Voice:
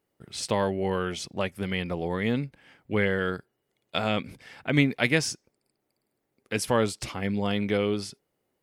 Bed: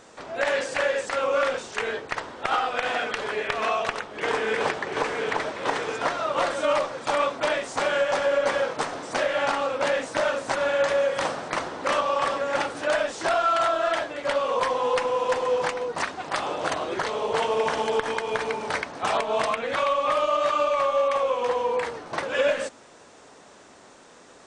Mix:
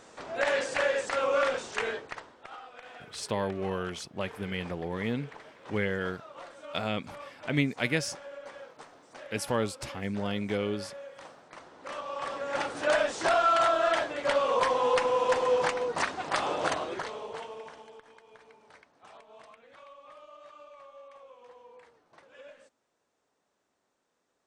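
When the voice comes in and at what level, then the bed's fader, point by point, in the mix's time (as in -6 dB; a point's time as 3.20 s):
2.80 s, -5.0 dB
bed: 1.86 s -3 dB
2.53 s -21.5 dB
11.50 s -21.5 dB
12.88 s -1.5 dB
16.66 s -1.5 dB
18.04 s -28 dB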